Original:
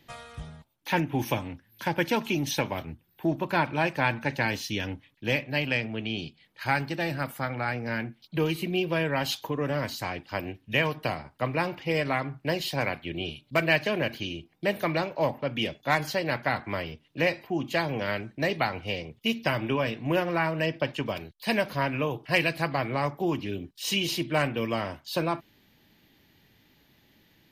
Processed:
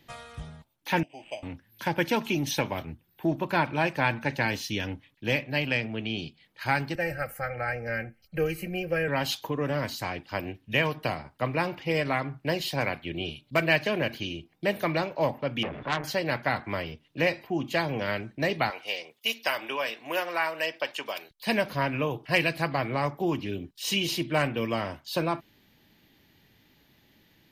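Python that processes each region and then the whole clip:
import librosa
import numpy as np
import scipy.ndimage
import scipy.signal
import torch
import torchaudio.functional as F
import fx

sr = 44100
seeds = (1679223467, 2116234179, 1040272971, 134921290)

y = fx.chain(x, sr, fx.double_bandpass(hz=1300.0, octaves=2.0),
    fx.resample_bad(factor=8, down='none', up='hold'),
    fx.air_absorb(metres=110.0), at=(1.03, 1.43))
y = fx.chain(y, sr, fx.low_shelf(hz=140.0, db=11.5),
    fx.fixed_phaser(hz=980.0, stages=6),
    fx.comb(ms=3.8, depth=0.62), at=(6.95, 9.08))
y = fx.chain(y, sr, fx.zero_step(step_db=-31.5),
    fx.lowpass(hz=2100.0, slope=24),
    fx.transformer_sat(knee_hz=2300.0), at=(15.63, 16.04))
y = fx.chain(y, sr, fx.highpass(hz=590.0, slope=12),
    fx.high_shelf(hz=5200.0, db=8.5), at=(18.7, 21.31))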